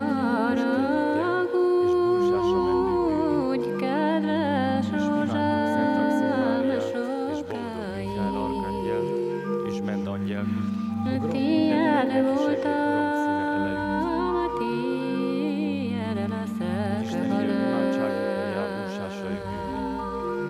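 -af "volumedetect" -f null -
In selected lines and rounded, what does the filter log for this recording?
mean_volume: -24.7 dB
max_volume: -9.5 dB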